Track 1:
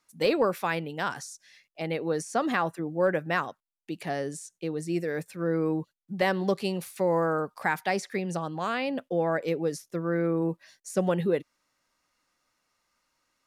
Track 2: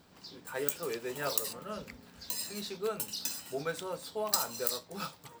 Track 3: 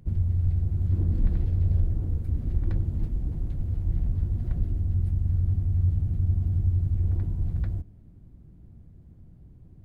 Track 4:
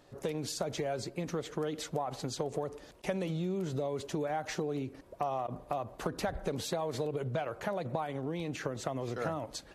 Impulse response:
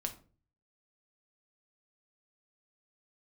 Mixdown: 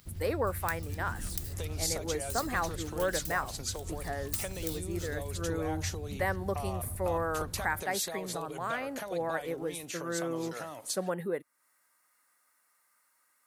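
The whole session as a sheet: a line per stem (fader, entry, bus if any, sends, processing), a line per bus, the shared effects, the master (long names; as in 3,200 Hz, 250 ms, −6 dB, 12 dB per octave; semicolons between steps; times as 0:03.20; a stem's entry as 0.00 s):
−4.5 dB, 0.00 s, no send, flat-topped bell 4,100 Hz −14 dB
−11.5 dB, 0.00 s, no send, phase distortion by the signal itself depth 0.4 ms; guitar amp tone stack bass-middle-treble 10-0-10
−6.0 dB, 0.00 s, no send, no processing
−5.0 dB, 1.35 s, no send, high-shelf EQ 5,500 Hz +9.5 dB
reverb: not used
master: spectral tilt +2.5 dB per octave; one half of a high-frequency compander encoder only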